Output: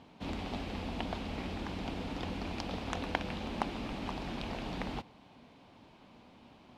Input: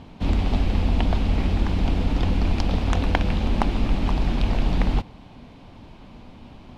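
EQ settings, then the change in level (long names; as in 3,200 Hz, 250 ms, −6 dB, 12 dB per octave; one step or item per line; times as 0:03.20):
high-pass filter 290 Hz 6 dB per octave
−8.5 dB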